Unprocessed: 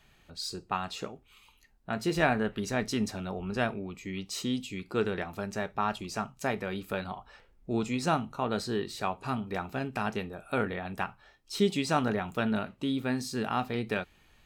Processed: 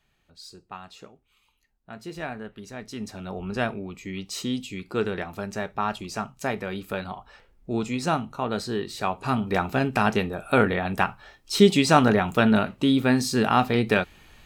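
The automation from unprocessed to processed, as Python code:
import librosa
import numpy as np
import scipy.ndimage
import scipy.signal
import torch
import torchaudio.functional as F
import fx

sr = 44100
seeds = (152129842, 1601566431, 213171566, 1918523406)

y = fx.gain(x, sr, db=fx.line((2.83, -8.0), (3.38, 3.0), (8.86, 3.0), (9.56, 10.0)))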